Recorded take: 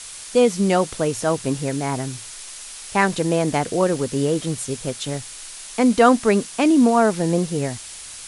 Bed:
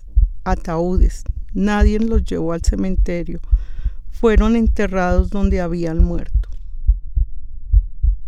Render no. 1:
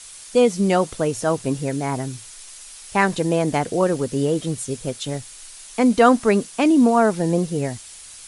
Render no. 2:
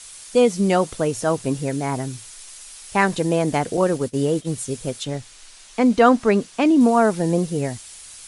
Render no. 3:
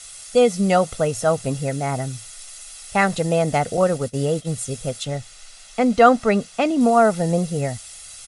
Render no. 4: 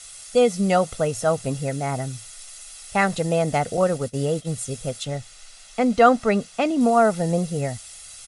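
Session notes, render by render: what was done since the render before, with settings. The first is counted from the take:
broadband denoise 6 dB, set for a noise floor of −37 dBFS
0:03.77–0:04.52: downward expander −25 dBFS; 0:05.04–0:06.81: high-frequency loss of the air 58 metres
comb filter 1.5 ms, depth 56%
level −2 dB

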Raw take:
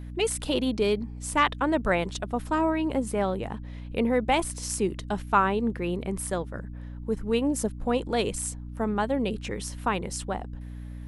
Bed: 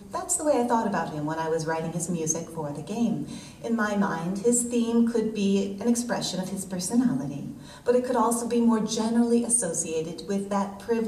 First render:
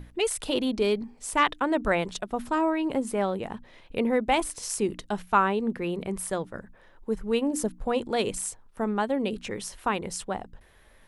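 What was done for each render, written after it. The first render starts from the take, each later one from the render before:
mains-hum notches 60/120/180/240/300 Hz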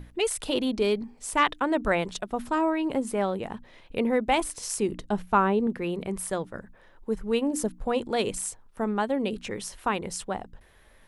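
0:04.91–0:05.67: tilt shelving filter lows +4.5 dB, about 910 Hz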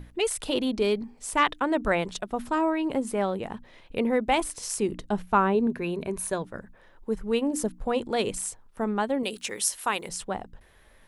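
0:05.54–0:06.42: EQ curve with evenly spaced ripples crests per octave 1.5, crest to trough 7 dB
0:09.23–0:10.09: RIAA equalisation recording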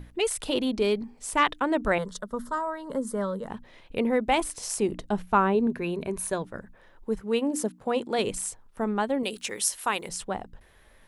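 0:01.98–0:03.48: phaser with its sweep stopped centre 500 Hz, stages 8
0:04.59–0:05.07: parametric band 700 Hz +6.5 dB 0.73 octaves
0:07.20–0:08.19: high-pass filter 160 Hz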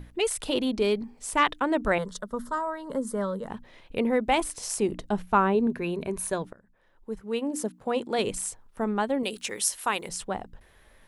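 0:06.53–0:08.47: fade in equal-power, from −22 dB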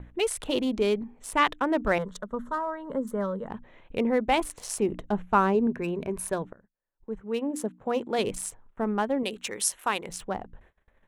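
adaptive Wiener filter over 9 samples
noise gate −54 dBFS, range −26 dB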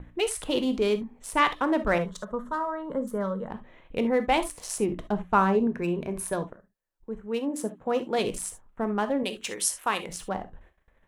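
reverb whose tail is shaped and stops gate 90 ms flat, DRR 9 dB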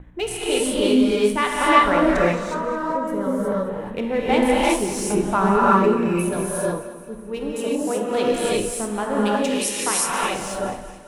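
echo with a time of its own for lows and highs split 320 Hz, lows 289 ms, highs 215 ms, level −14 dB
reverb whose tail is shaped and stops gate 390 ms rising, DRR −6 dB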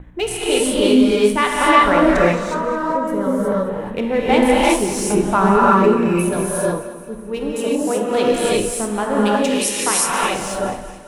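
level +4 dB
brickwall limiter −2 dBFS, peak gain reduction 3 dB

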